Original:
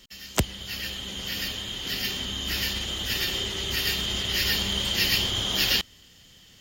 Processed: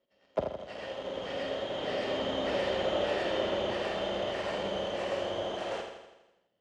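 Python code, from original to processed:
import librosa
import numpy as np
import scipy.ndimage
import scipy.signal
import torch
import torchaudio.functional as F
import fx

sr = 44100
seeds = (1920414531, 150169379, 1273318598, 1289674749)

p1 = fx.self_delay(x, sr, depth_ms=0.31)
p2 = fx.doppler_pass(p1, sr, speed_mps=5, closest_m=3.3, pass_at_s=2.74)
p3 = fx.peak_eq(p2, sr, hz=580.0, db=9.5, octaves=0.36)
p4 = fx.fuzz(p3, sr, gain_db=43.0, gate_db=-45.0)
p5 = p3 + (p4 * 10.0 ** (-8.0 / 20.0))
p6 = fx.bandpass_q(p5, sr, hz=580.0, q=1.6)
p7 = fx.air_absorb(p6, sr, metres=82.0)
p8 = fx.doubler(p7, sr, ms=48.0, db=-8)
y = p8 + fx.echo_feedback(p8, sr, ms=82, feedback_pct=58, wet_db=-6.5, dry=0)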